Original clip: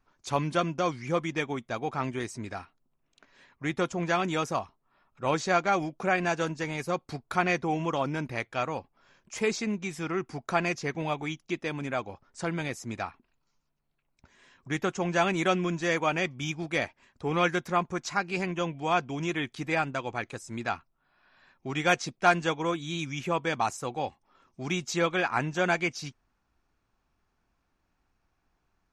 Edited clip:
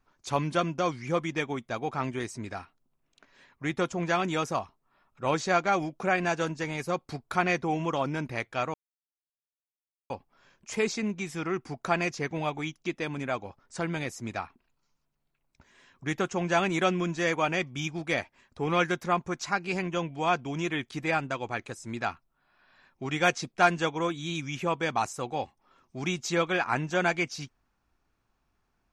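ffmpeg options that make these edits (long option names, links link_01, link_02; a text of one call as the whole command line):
ffmpeg -i in.wav -filter_complex "[0:a]asplit=2[link_01][link_02];[link_01]atrim=end=8.74,asetpts=PTS-STARTPTS,afade=type=out:start_time=8.736:duration=0.004:curve=hsin,apad=pad_dur=1.36[link_03];[link_02]atrim=start=8.74,asetpts=PTS-STARTPTS,afade=type=in:duration=0.004:curve=hsin[link_04];[link_03][link_04]concat=n=2:v=0:a=1" out.wav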